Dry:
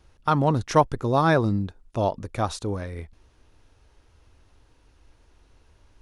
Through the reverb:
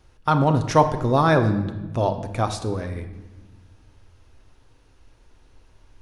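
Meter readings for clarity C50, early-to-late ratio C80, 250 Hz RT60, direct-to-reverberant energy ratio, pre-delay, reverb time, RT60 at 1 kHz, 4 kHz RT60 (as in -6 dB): 10.5 dB, 12.5 dB, 2.3 s, 7.0 dB, 8 ms, 1.2 s, 1.1 s, 0.85 s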